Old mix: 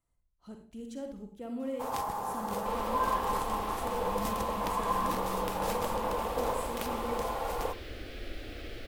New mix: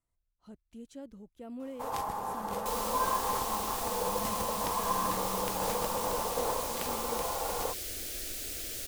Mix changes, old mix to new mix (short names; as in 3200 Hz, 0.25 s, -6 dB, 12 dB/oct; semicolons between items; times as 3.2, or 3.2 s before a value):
second sound: remove air absorption 400 m; reverb: off